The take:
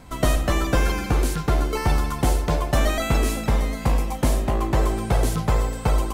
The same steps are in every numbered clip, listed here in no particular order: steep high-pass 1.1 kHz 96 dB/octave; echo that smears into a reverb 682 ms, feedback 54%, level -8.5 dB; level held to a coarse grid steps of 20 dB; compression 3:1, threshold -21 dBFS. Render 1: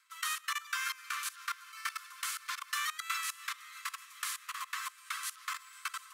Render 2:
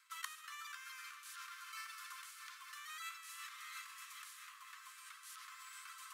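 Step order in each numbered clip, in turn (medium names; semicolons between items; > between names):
echo that smears into a reverb > level held to a coarse grid > compression > steep high-pass; echo that smears into a reverb > compression > level held to a coarse grid > steep high-pass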